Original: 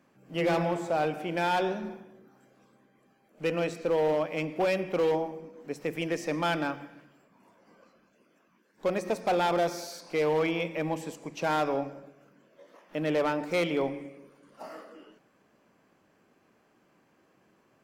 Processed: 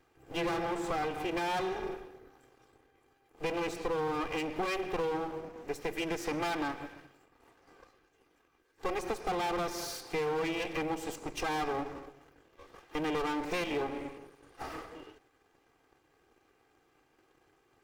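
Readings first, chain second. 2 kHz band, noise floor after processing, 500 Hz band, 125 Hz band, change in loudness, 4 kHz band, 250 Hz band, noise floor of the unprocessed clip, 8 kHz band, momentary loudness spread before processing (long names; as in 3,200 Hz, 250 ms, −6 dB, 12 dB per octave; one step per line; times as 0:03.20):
−3.0 dB, −71 dBFS, −6.5 dB, −7.5 dB, −5.5 dB, −2.0 dB, −4.0 dB, −67 dBFS, +0.5 dB, 15 LU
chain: lower of the sound and its delayed copy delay 2.5 ms
downward compressor, threshold −33 dBFS, peak gain reduction 9.5 dB
leveller curve on the samples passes 1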